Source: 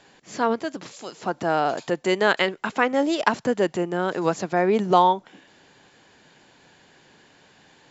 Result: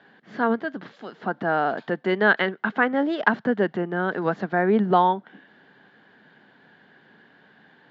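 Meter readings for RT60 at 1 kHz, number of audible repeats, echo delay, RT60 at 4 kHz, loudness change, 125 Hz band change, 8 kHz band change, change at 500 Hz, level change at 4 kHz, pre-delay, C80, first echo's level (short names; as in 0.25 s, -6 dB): none, none, none, none, -0.5 dB, +1.5 dB, n/a, -1.5 dB, -6.0 dB, none, none, none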